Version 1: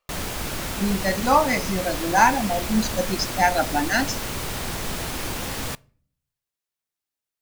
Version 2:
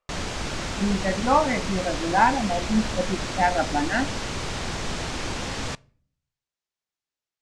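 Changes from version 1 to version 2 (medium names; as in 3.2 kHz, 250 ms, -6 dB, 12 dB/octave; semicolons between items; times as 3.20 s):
speech: add distance through air 450 m; master: add low-pass 7.4 kHz 24 dB/octave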